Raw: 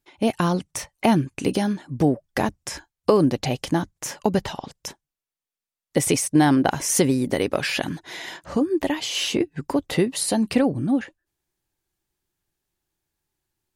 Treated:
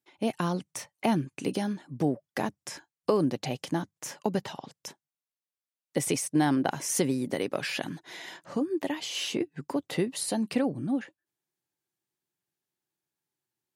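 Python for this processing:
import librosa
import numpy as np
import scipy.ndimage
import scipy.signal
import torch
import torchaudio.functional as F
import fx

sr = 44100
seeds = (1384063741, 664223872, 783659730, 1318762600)

y = scipy.signal.sosfilt(scipy.signal.butter(4, 120.0, 'highpass', fs=sr, output='sos'), x)
y = F.gain(torch.from_numpy(y), -7.5).numpy()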